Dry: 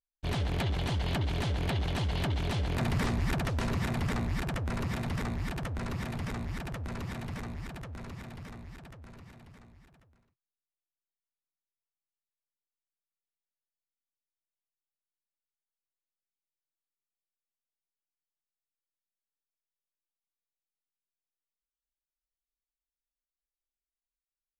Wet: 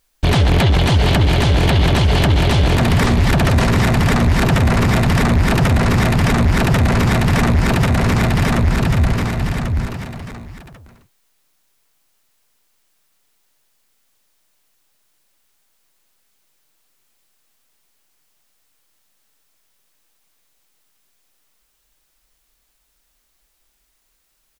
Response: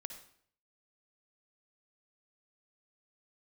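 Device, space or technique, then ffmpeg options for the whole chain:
loud club master: -filter_complex "[0:a]asettb=1/sr,asplit=3[a][b][c];[a]atrim=end=8.584[d];[b]atrim=start=8.58:end=9.13,asetpts=PTS-STARTPTS,afade=t=in:d=0.004:c=qsin,afade=t=out:st=0.546:d=0.004:c=qsin,asubboost=boost=11.5:cutoff=240[e];[c]atrim=start=9.126[f];[d][e]acrossfade=d=0.004:c1=hsin:c2=qsin[g];[g][f]acrossfade=d=0.004:c1=qsin:c2=hsin,aecho=1:1:731:0.473,acompressor=threshold=-33dB:ratio=2.5,asoftclip=type=hard:threshold=-26dB,alimiter=level_in=35.5dB:limit=-1dB:release=50:level=0:latency=1,volume=-6dB"

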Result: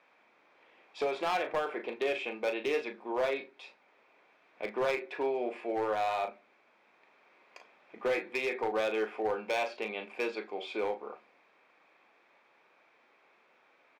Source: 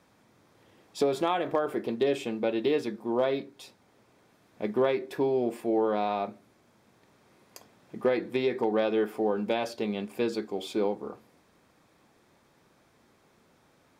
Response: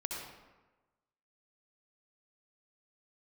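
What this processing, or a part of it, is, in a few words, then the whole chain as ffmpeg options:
megaphone: -filter_complex "[0:a]highpass=550,lowpass=2.9k,equalizer=f=2.4k:t=o:w=0.37:g=9.5,asoftclip=type=hard:threshold=-25.5dB,asplit=2[a][b];[b]adelay=37,volume=-9dB[c];[a][c]amix=inputs=2:normalize=0"

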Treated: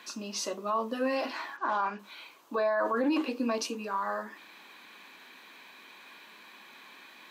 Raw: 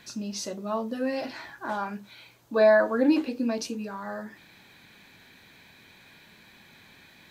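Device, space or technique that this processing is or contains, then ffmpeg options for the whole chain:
laptop speaker: -filter_complex "[0:a]asplit=3[a][b][c];[a]afade=t=out:st=1.56:d=0.02[d];[b]lowpass=f=6.3k:w=0.5412,lowpass=f=6.3k:w=1.3066,afade=t=in:st=1.56:d=0.02,afade=t=out:st=1.98:d=0.02[e];[c]afade=t=in:st=1.98:d=0.02[f];[d][e][f]amix=inputs=3:normalize=0,highpass=f=250:w=0.5412,highpass=f=250:w=1.3066,equalizer=f=1.1k:t=o:w=0.46:g=11,equalizer=f=2.8k:t=o:w=0.39:g=5,alimiter=limit=-21dB:level=0:latency=1:release=13"

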